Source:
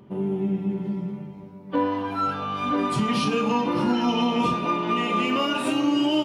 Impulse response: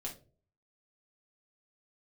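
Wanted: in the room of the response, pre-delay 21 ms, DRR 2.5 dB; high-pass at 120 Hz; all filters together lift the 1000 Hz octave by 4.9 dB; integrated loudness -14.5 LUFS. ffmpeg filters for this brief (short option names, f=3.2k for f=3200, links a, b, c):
-filter_complex "[0:a]highpass=120,equalizer=f=1k:t=o:g=6,asplit=2[a][b];[1:a]atrim=start_sample=2205,adelay=21[c];[b][c]afir=irnorm=-1:irlink=0,volume=-1.5dB[d];[a][d]amix=inputs=2:normalize=0,volume=4.5dB"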